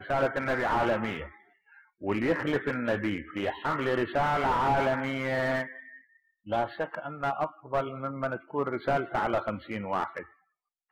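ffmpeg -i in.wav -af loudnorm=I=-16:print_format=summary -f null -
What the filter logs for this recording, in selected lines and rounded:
Input Integrated:    -30.1 LUFS
Input True Peak:     -13.5 dBTP
Input LRA:             4.2 LU
Input Threshold:     -40.7 LUFS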